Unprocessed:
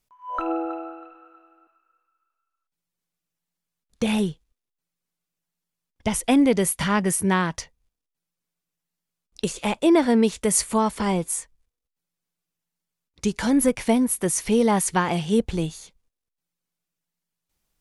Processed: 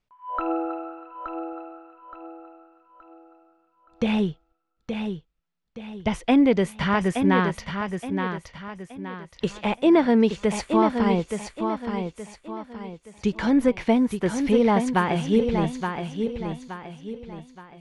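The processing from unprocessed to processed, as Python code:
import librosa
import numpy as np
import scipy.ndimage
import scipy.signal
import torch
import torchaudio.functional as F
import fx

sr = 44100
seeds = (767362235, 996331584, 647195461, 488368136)

y = scipy.signal.sosfilt(scipy.signal.butter(2, 3400.0, 'lowpass', fs=sr, output='sos'), x)
y = fx.echo_feedback(y, sr, ms=872, feedback_pct=38, wet_db=-6.5)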